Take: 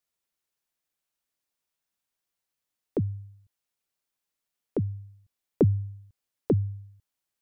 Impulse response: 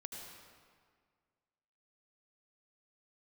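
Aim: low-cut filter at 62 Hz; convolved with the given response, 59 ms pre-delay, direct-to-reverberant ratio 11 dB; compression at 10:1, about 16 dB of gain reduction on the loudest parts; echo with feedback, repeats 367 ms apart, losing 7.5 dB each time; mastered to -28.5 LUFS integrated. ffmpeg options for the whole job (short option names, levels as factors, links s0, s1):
-filter_complex "[0:a]highpass=62,acompressor=threshold=0.0224:ratio=10,aecho=1:1:367|734|1101|1468|1835:0.422|0.177|0.0744|0.0312|0.0131,asplit=2[s0][s1];[1:a]atrim=start_sample=2205,adelay=59[s2];[s1][s2]afir=irnorm=-1:irlink=0,volume=0.398[s3];[s0][s3]amix=inputs=2:normalize=0,volume=4.47"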